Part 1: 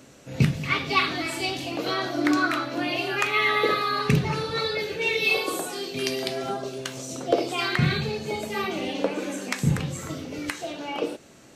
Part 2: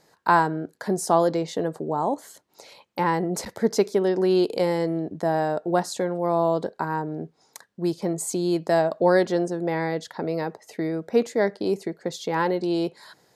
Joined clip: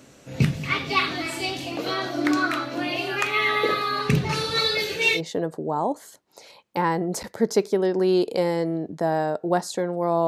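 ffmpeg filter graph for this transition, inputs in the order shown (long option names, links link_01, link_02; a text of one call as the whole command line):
ffmpeg -i cue0.wav -i cue1.wav -filter_complex "[0:a]asettb=1/sr,asplit=3[link_01][link_02][link_03];[link_01]atrim=end=4.294[link_04];[link_02]atrim=start=4.29:end=5.21,asetpts=PTS-STARTPTS,afade=type=in:duration=0.004:curve=qsin,afade=type=out:start_time=0.916:duration=0.004:curve=qsin,highshelf=frequency=2500:gain=10.5[link_05];[link_03]atrim=start=5.206[link_06];[link_04][link_05]acrossfade=duration=0.004:curve1=hsin:curve2=qsin[link_07];[link_07][link_06]acrossfade=duration=0.004:curve1=qsin:curve2=hsin,apad=whole_dur=10.27,atrim=end=10.27,atrim=end=5.21,asetpts=PTS-STARTPTS[link_08];[1:a]atrim=start=1.35:end=6.49,asetpts=PTS-STARTPTS[link_09];[link_08][link_09]acrossfade=duration=0.08:curve1=tri:curve2=tri" out.wav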